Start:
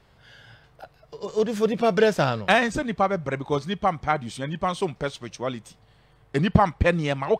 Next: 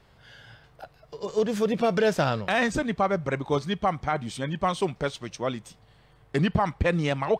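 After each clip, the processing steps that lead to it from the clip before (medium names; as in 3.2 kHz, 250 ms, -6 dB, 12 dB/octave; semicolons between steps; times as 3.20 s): peak limiter -13.5 dBFS, peak gain reduction 8 dB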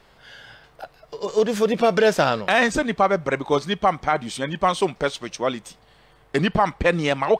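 peaking EQ 98 Hz -11.5 dB 1.7 oct; trim +6.5 dB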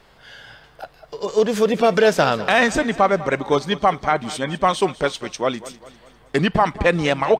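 feedback delay 200 ms, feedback 49%, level -17 dB; trim +2 dB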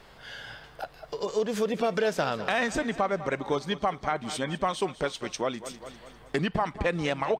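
compression 2:1, threshold -32 dBFS, peak gain reduction 12 dB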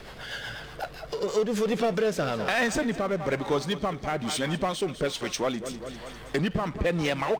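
rotary cabinet horn 8 Hz, later 1.1 Hz, at 0.79 s; power-law waveshaper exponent 0.7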